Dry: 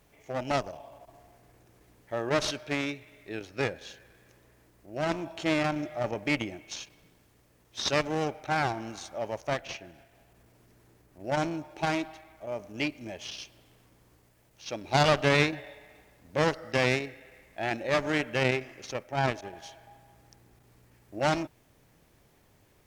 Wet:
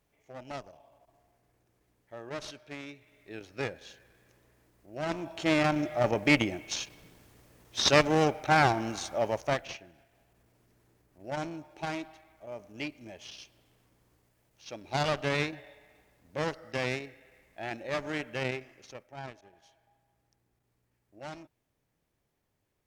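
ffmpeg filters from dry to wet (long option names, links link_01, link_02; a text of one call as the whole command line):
ffmpeg -i in.wav -af "volume=5dB,afade=type=in:start_time=2.85:duration=0.66:silence=0.421697,afade=type=in:start_time=5.01:duration=1.14:silence=0.334965,afade=type=out:start_time=9.21:duration=0.65:silence=0.266073,afade=type=out:start_time=18.42:duration=0.88:silence=0.316228" out.wav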